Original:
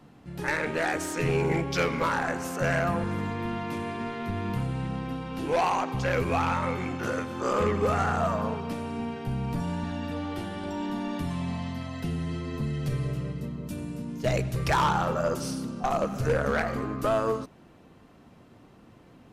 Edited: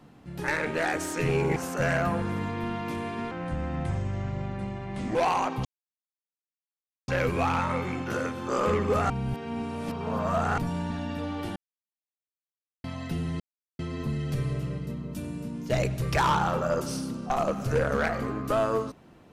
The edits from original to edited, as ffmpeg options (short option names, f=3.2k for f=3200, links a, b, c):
-filter_complex "[0:a]asplit=10[a][b][c][d][e][f][g][h][i][j];[a]atrim=end=1.562[k];[b]atrim=start=2.378:end=4.134[l];[c]atrim=start=4.13:end=5.51,asetpts=PTS-STARTPTS,asetrate=33075,aresample=44100[m];[d]atrim=start=5.506:end=6.01,asetpts=PTS-STARTPTS,afade=t=out:st=0.5:d=0.004:c=hsin,apad=pad_dur=1.43[n];[e]atrim=start=6.01:end=8.032,asetpts=PTS-STARTPTS,afade=t=in:d=0.004:c=hsin[o];[f]atrim=start=8.028:end=9.512,asetpts=PTS-STARTPTS,areverse[p];[g]atrim=start=9.508:end=10.49,asetpts=PTS-STARTPTS,afade=t=out:st=0.978:d=0.004:c=hsin[q];[h]atrim=start=10.49:end=11.77,asetpts=PTS-STARTPTS,volume=0[r];[i]atrim=start=11.77:end=12.33,asetpts=PTS-STARTPTS,afade=t=in:d=0.004:c=hsin,afade=t=out:st=0.556:d=0.004:c=hsin,apad=pad_dur=0.39[s];[j]atrim=start=12.33,asetpts=PTS-STARTPTS,afade=t=in:d=0.004:c=hsin[t];[k][l]acrossfade=d=0.004:c1=hsin:c2=hsin[u];[u][m]acrossfade=d=0.004:c1=hsin:c2=hsin[v];[n][o]concat=n=2:v=0:a=1[w];[v][w]acrossfade=d=0.004:c1=hsin:c2=hsin[x];[x][p]acrossfade=d=0.004:c1=hsin:c2=hsin[y];[q][r][s][t]concat=n=4:v=0:a=1[z];[y][z]acrossfade=d=0.004:c1=hsin:c2=hsin"